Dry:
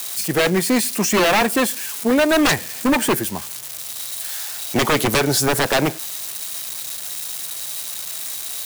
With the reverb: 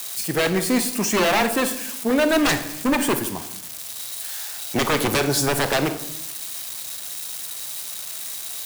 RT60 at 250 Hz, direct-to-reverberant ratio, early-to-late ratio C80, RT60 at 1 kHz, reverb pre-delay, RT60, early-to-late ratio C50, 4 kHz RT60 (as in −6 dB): 0.85 s, 9.0 dB, 13.5 dB, 0.70 s, 30 ms, 0.75 s, 11.0 dB, 0.55 s